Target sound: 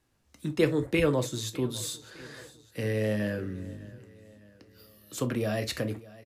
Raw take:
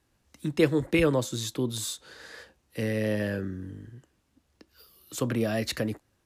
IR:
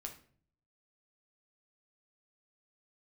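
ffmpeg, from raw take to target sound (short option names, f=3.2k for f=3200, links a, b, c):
-filter_complex "[0:a]aecho=1:1:606|1212|1818|2424:0.1|0.05|0.025|0.0125,asplit=2[a][b];[1:a]atrim=start_sample=2205,atrim=end_sample=3087[c];[b][c]afir=irnorm=-1:irlink=0,volume=6dB[d];[a][d]amix=inputs=2:normalize=0,volume=-8.5dB"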